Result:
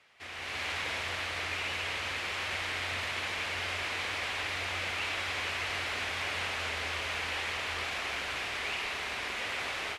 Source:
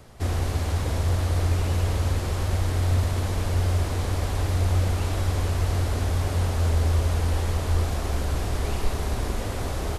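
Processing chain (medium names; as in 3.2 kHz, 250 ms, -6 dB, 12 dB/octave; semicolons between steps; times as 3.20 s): level rider gain up to 12 dB; band-pass filter 2.4 kHz, Q 2.2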